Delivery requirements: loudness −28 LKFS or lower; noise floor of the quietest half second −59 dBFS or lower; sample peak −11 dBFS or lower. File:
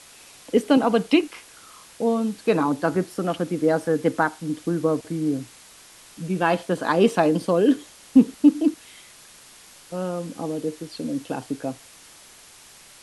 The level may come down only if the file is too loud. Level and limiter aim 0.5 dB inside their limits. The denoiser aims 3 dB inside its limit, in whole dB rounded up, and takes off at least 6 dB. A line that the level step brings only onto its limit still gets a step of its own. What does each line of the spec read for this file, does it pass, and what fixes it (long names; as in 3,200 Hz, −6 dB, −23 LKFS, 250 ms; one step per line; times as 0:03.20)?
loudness −23.0 LKFS: out of spec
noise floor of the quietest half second −48 dBFS: out of spec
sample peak −4.5 dBFS: out of spec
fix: broadband denoise 9 dB, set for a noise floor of −48 dBFS
level −5.5 dB
brickwall limiter −11.5 dBFS